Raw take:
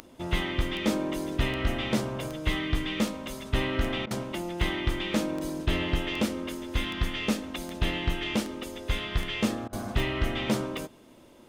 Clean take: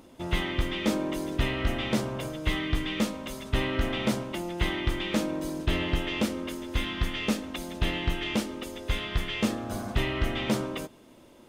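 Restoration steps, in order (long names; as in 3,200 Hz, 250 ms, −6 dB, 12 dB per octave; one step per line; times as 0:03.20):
click removal
repair the gap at 0:04.06/0:09.68, 47 ms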